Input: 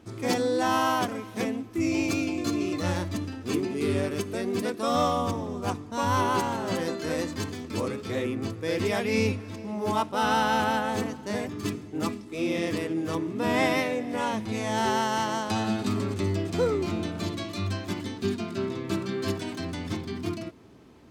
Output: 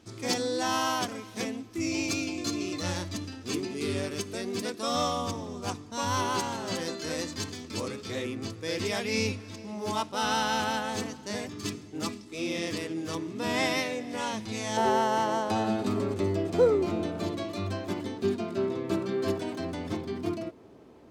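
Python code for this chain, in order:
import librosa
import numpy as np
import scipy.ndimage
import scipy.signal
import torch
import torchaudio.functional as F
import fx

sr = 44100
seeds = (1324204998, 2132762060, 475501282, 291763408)

y = fx.peak_eq(x, sr, hz=fx.steps((0.0, 5400.0), (14.77, 540.0)), db=9.5, octaves=1.8)
y = F.gain(torch.from_numpy(y), -5.0).numpy()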